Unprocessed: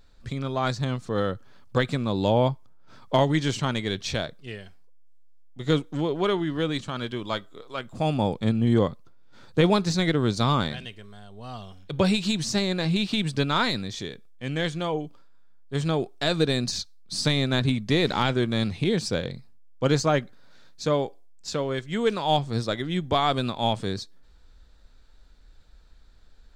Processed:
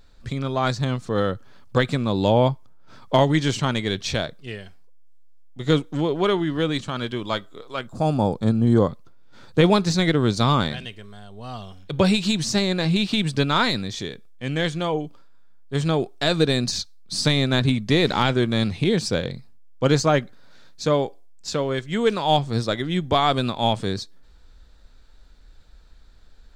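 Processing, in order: 7.87–8.89 band shelf 2500 Hz -9 dB 1.1 oct; gain +3.5 dB

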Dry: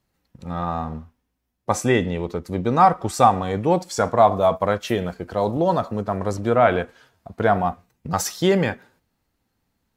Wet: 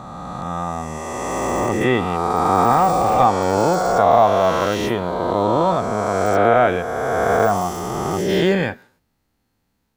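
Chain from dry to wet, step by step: spectral swells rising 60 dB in 2.90 s; de-esser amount 60%; gain -1.5 dB

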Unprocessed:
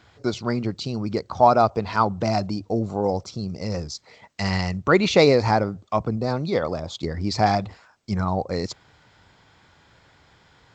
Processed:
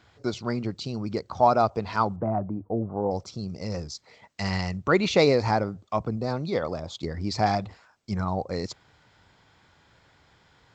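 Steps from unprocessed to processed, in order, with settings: 2.16–3.11 LPF 1300 Hz 24 dB/oct; gain -4 dB

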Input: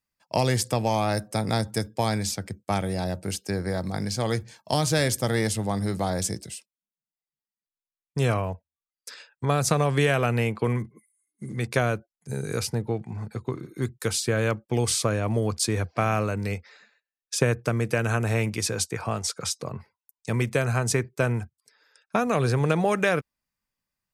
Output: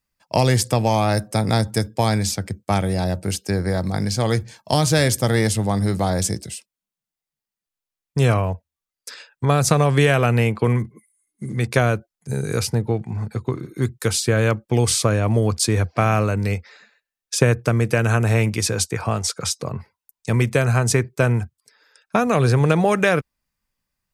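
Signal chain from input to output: low shelf 80 Hz +8 dB; gain +5 dB

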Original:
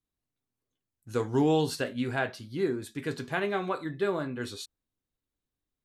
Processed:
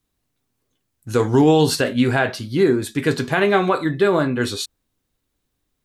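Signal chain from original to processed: maximiser +19.5 dB; gain -5.5 dB

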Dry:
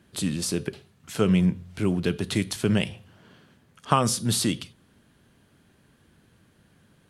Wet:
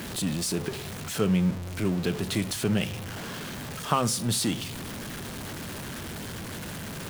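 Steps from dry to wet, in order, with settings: zero-crossing step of -26.5 dBFS; de-hum 67.28 Hz, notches 2; gain -4.5 dB

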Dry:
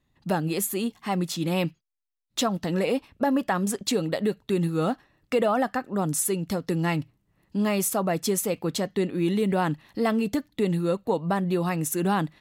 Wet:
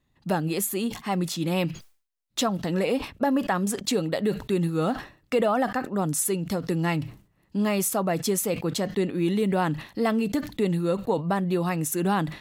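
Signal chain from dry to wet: sustainer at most 140 dB/s

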